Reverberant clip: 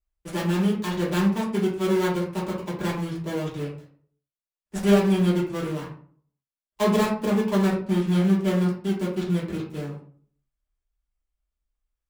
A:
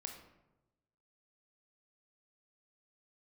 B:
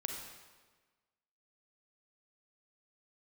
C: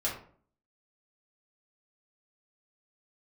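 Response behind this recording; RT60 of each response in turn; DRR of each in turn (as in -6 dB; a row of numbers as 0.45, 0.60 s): C; 1.0, 1.4, 0.50 s; 3.5, 2.0, -6.0 dB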